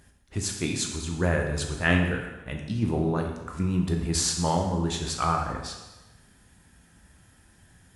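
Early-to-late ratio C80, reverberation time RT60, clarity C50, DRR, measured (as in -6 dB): 7.0 dB, 1.1 s, 5.0 dB, 2.0 dB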